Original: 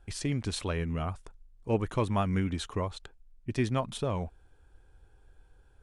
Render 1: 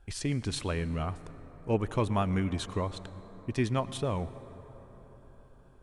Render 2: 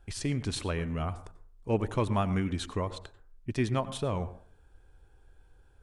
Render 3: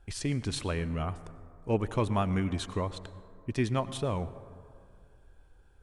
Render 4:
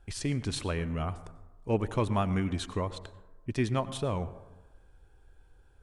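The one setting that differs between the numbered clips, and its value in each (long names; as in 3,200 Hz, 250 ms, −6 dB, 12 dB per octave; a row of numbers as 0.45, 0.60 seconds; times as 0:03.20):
dense smooth reverb, RT60: 5.3, 0.5, 2.3, 1.1 seconds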